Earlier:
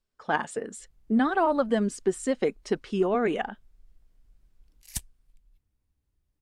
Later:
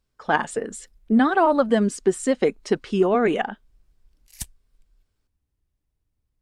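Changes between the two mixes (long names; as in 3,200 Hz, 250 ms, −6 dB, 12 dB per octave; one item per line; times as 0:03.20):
speech +5.5 dB
background: entry −0.55 s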